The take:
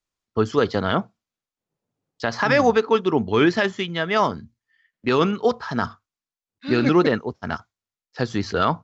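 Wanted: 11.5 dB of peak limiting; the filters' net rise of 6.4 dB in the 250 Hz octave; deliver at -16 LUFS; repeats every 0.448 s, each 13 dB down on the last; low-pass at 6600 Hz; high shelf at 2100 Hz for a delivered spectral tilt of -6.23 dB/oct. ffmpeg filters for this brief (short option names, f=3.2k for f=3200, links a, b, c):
-af "lowpass=6.6k,equalizer=f=250:t=o:g=8.5,highshelf=f=2.1k:g=-7.5,alimiter=limit=-14.5dB:level=0:latency=1,aecho=1:1:448|896|1344:0.224|0.0493|0.0108,volume=9dB"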